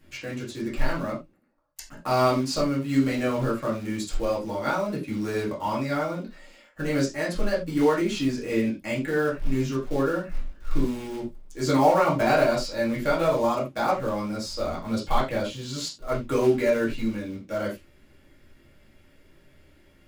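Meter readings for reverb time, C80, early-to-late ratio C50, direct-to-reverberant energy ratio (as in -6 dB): no single decay rate, 15.5 dB, 9.0 dB, -6.5 dB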